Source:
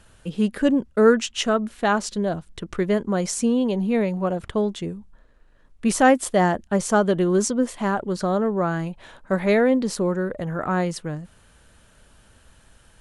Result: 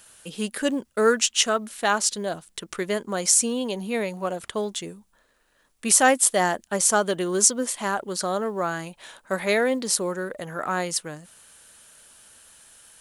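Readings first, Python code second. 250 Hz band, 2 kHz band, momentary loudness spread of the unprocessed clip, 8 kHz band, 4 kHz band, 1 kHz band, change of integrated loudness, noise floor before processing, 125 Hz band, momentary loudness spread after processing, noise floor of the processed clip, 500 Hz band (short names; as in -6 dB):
-8.0 dB, +1.0 dB, 11 LU, +10.5 dB, +5.0 dB, -1.5 dB, -1.0 dB, -55 dBFS, -10.0 dB, 13 LU, -65 dBFS, -4.0 dB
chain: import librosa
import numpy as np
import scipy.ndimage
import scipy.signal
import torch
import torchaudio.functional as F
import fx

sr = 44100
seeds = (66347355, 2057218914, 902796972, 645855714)

y = fx.riaa(x, sr, side='recording')
y = fx.quant_companded(y, sr, bits=8)
y = y * 10.0 ** (-1.0 / 20.0)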